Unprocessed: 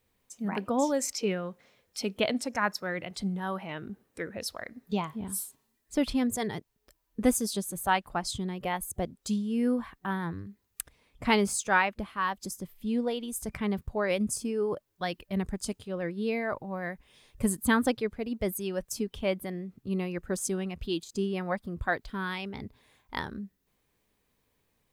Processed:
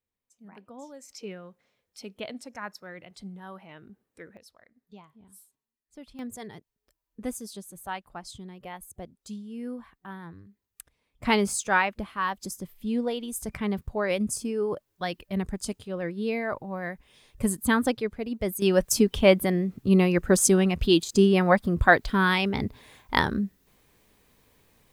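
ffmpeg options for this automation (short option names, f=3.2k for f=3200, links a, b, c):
-af "asetnsamples=n=441:p=0,asendcmd='1.1 volume volume -9.5dB;4.37 volume volume -19dB;6.19 volume volume -9dB;11.23 volume volume 1.5dB;18.62 volume volume 11.5dB',volume=-17.5dB"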